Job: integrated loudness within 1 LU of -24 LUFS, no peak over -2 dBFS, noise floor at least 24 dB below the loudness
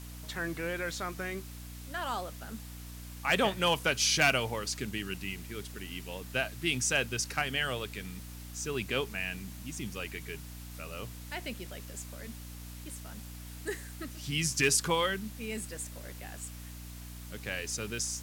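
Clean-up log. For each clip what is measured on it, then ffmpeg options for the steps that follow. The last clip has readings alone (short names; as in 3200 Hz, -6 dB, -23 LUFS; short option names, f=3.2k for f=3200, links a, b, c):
hum 60 Hz; harmonics up to 300 Hz; hum level -43 dBFS; noise floor -45 dBFS; noise floor target -57 dBFS; loudness -33.0 LUFS; peak -13.5 dBFS; loudness target -24.0 LUFS
-> -af "bandreject=f=60:t=h:w=6,bandreject=f=120:t=h:w=6,bandreject=f=180:t=h:w=6,bandreject=f=240:t=h:w=6,bandreject=f=300:t=h:w=6"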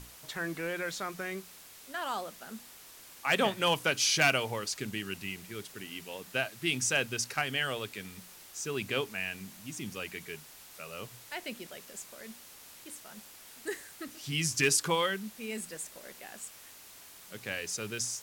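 hum none; noise floor -52 dBFS; noise floor target -57 dBFS
-> -af "afftdn=nr=6:nf=-52"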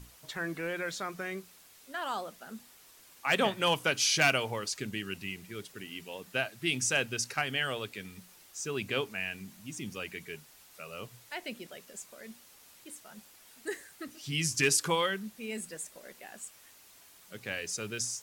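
noise floor -58 dBFS; loudness -32.5 LUFS; peak -13.5 dBFS; loudness target -24.0 LUFS
-> -af "volume=8.5dB"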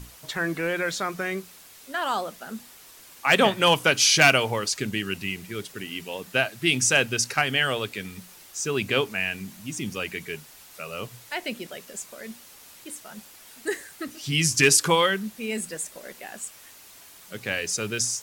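loudness -24.0 LUFS; peak -5.0 dBFS; noise floor -49 dBFS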